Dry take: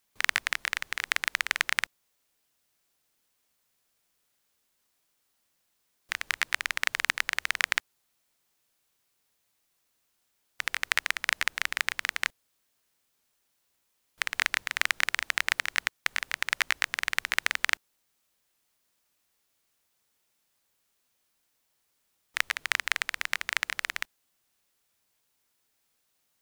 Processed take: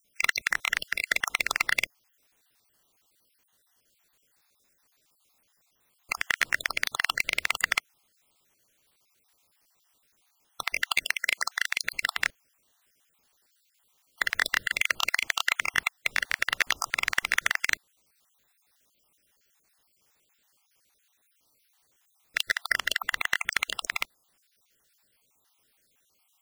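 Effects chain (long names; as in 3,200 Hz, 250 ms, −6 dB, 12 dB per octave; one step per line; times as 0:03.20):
time-frequency cells dropped at random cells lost 51%
0:11.05–0:11.83: high-pass filter 850 Hz 6 dB per octave
soft clipping −18 dBFS, distortion −9 dB
level +8.5 dB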